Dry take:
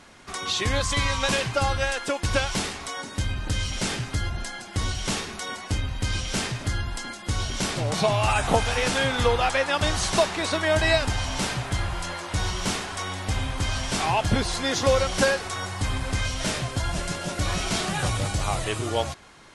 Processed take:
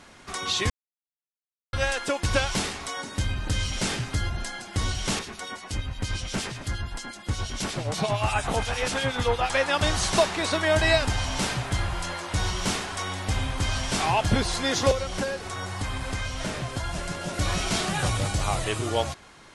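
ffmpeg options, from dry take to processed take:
-filter_complex "[0:a]asettb=1/sr,asplit=3[a][b][c];[a]atrim=end=5.194[d];[b]atrim=start=5.19:end=9.5,asetpts=PTS-STARTPTS,afade=t=in:d=0.004:c=qsin,afade=t=out:st=4.306:d=0.004:c=qsin,acrossover=split=2500[e][f];[e]aeval=exprs='val(0)*(1-0.7/2+0.7/2*cos(2*PI*8.5*n/s))':c=same[g];[f]aeval=exprs='val(0)*(1-0.7/2-0.7/2*cos(2*PI*8.5*n/s))':c=same[h];[g][h]amix=inputs=2:normalize=0[i];[c]atrim=start=9.496[j];[d][i]acrossfade=d=0.004:c1=hsin:c2=qsin[k];[k][j]acrossfade=d=0.004:c1=qsin:c2=hsin,asettb=1/sr,asplit=3[l][m][n];[l]atrim=end=14.914[o];[m]atrim=start=14.91:end=17.34,asetpts=PTS-STARTPTS,afade=t=in:d=0.004:c=qsin,afade=t=out:st=2.426:d=0.004:c=qsin,acrossover=split=530|2300[p][q][r];[p]acompressor=threshold=-29dB:ratio=4[s];[q]acompressor=threshold=-34dB:ratio=4[t];[r]acompressor=threshold=-39dB:ratio=4[u];[s][t][u]amix=inputs=3:normalize=0[v];[n]atrim=start=17.336[w];[o][v]acrossfade=d=0.004:c1=hsin:c2=qsin[x];[x][w]acrossfade=d=0.004:c1=qsin:c2=hsin,asplit=3[y][z][aa];[y]atrim=end=0.7,asetpts=PTS-STARTPTS,afade=t=out:st=0.696:d=0.004:c=hsin[ab];[z]atrim=start=0.7:end=1.73,asetpts=PTS-STARTPTS,volume=0[ac];[aa]atrim=start=1.73,asetpts=PTS-STARTPTS,afade=t=in:d=0.004:c=hsin[ad];[ab][ac][ad]concat=n=3:v=0:a=1"

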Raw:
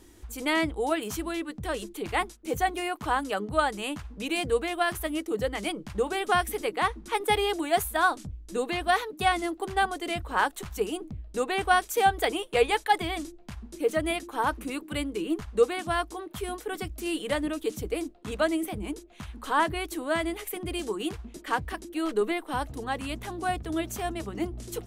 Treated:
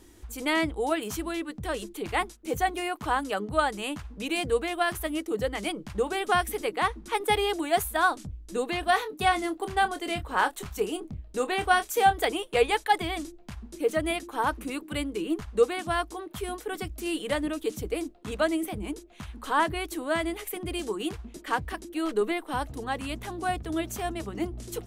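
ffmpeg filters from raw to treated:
-filter_complex "[0:a]asettb=1/sr,asplit=3[a][b][c];[a]atrim=end=8.804[d];[b]atrim=start=8.8:end=12.25,asetpts=PTS-STARTPTS,afade=t=in:d=0.004:c=qsin,afade=t=out:st=3.446:d=0.004:c=qsin,asplit=2[e][f];[f]adelay=27,volume=-11dB[g];[e][g]amix=inputs=2:normalize=0,atrim=end_sample=152145[h];[c]atrim=start=12.246[i];[d][h]acrossfade=d=0.004:c1=hsin:c2=qsin[j];[j][i]acrossfade=d=0.004:c1=qsin:c2=hsin"

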